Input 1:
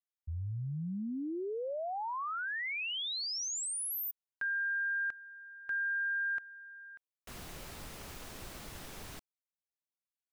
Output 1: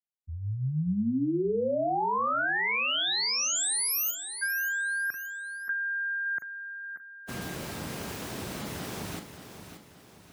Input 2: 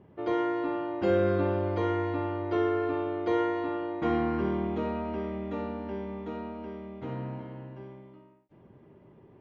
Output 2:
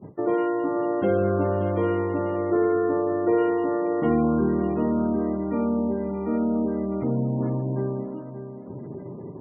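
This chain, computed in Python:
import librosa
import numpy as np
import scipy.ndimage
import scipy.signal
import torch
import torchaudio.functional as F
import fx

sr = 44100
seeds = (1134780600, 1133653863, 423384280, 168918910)

p1 = fx.gate_hold(x, sr, open_db=-47.0, close_db=-53.0, hold_ms=34.0, range_db=-17, attack_ms=17.0, release_ms=52.0)
p2 = fx.low_shelf(p1, sr, hz=410.0, db=9.5)
p3 = fx.over_compress(p2, sr, threshold_db=-36.0, ratio=-1.0)
p4 = p2 + (p3 * librosa.db_to_amplitude(0.5))
p5 = scipy.signal.sosfilt(scipy.signal.butter(2, 140.0, 'highpass', fs=sr, output='sos'), p4)
p6 = fx.doubler(p5, sr, ms=39.0, db=-9.0)
p7 = fx.echo_feedback(p6, sr, ms=578, feedback_pct=43, wet_db=-10)
y = fx.spec_gate(p7, sr, threshold_db=-30, keep='strong')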